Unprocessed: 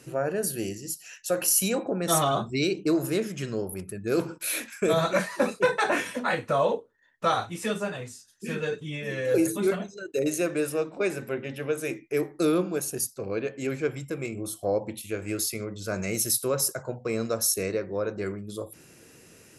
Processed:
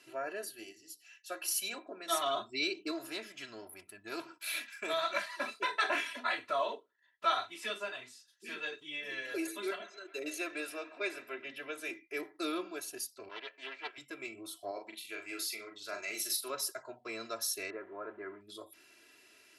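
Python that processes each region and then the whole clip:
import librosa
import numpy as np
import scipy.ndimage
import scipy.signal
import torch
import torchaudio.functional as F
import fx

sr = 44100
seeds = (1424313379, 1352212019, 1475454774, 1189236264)

y = fx.chain(x, sr, fx.hum_notches(base_hz=50, count=9),
    fx.upward_expand(threshold_db=-36.0, expansion=1.5), at=(0.44, 2.26))
y = fx.chain(y, sr, fx.halfwave_gain(db=-3.0),
    fx.peak_eq(hz=390.0, db=-6.0, octaves=0.44), at=(2.91, 5.6))
y = fx.chain(y, sr, fx.highpass(hz=190.0, slope=6),
    fx.echo_wet_bandpass(ms=139, feedback_pct=69, hz=1300.0, wet_db=-15), at=(9.22, 11.44))
y = fx.chain(y, sr, fx.law_mismatch(coded='A'),
    fx.bandpass_edges(low_hz=550.0, high_hz=4200.0),
    fx.doppler_dist(depth_ms=0.43), at=(13.29, 13.98))
y = fx.chain(y, sr, fx.highpass(hz=410.0, slope=6),
    fx.doubler(ms=40.0, db=-5.5), at=(14.71, 16.5))
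y = fx.chain(y, sr, fx.zero_step(step_db=-43.5),
    fx.lowpass(hz=1700.0, slope=24),
    fx.low_shelf(hz=83.0, db=-11.0), at=(17.7, 18.41))
y = fx.highpass(y, sr, hz=1400.0, slope=6)
y = fx.high_shelf_res(y, sr, hz=5300.0, db=-7.5, q=1.5)
y = y + 0.85 * np.pad(y, (int(3.0 * sr / 1000.0), 0))[:len(y)]
y = F.gain(torch.from_numpy(y), -5.0).numpy()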